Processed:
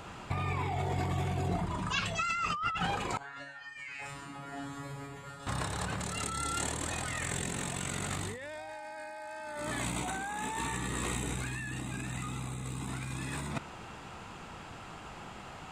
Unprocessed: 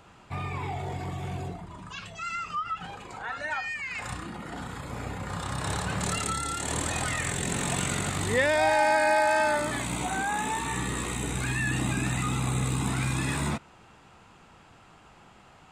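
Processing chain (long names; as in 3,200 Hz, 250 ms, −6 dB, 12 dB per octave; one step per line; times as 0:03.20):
compressor whose output falls as the input rises −37 dBFS, ratio −1
0:03.17–0:05.47: tuned comb filter 140 Hz, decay 0.47 s, harmonics all, mix 100%
level +1.5 dB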